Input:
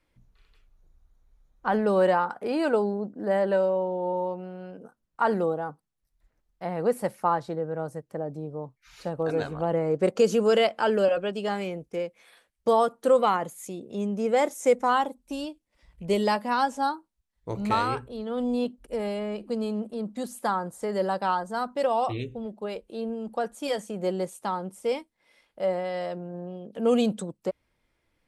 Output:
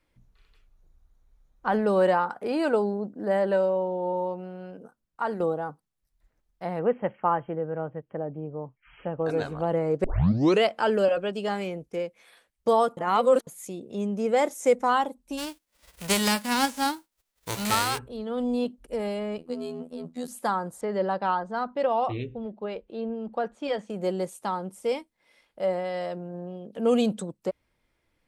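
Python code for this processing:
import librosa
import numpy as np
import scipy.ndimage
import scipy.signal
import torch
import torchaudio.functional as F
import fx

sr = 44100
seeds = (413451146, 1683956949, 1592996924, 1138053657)

y = fx.brickwall_lowpass(x, sr, high_hz=3300.0, at=(6.79, 9.26))
y = fx.envelope_flatten(y, sr, power=0.3, at=(15.37, 17.97), fade=0.02)
y = fx.robotise(y, sr, hz=82.3, at=(19.38, 20.28))
y = fx.lowpass(y, sr, hz=3300.0, slope=12, at=(20.81, 23.9))
y = fx.edit(y, sr, fx.fade_out_to(start_s=4.76, length_s=0.64, floor_db=-7.5),
    fx.tape_start(start_s=10.04, length_s=0.58),
    fx.reverse_span(start_s=12.97, length_s=0.5), tone=tone)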